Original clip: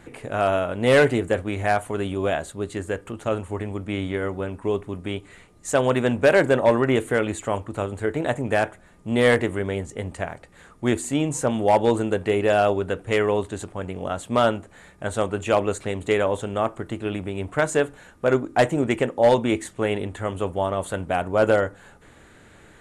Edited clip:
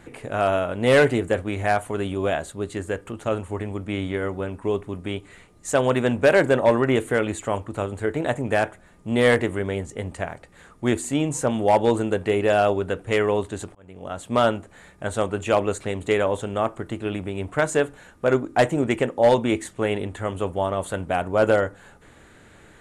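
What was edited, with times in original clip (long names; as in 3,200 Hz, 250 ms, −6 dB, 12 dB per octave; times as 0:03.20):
0:13.75–0:14.36: fade in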